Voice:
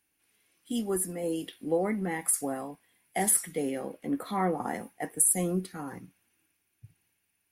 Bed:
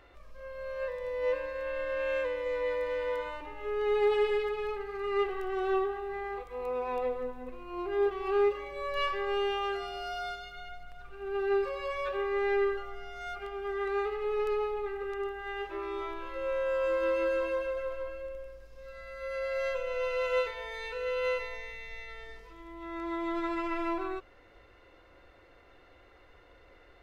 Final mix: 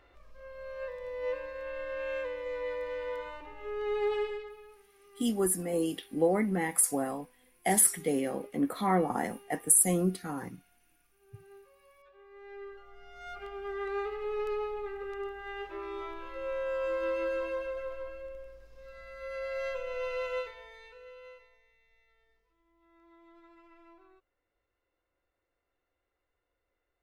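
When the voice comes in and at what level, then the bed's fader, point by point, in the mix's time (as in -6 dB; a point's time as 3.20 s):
4.50 s, +1.5 dB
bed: 4.18 s -4 dB
4.92 s -26.5 dB
12.13 s -26.5 dB
13.38 s -3 dB
20.18 s -3 dB
21.60 s -25.5 dB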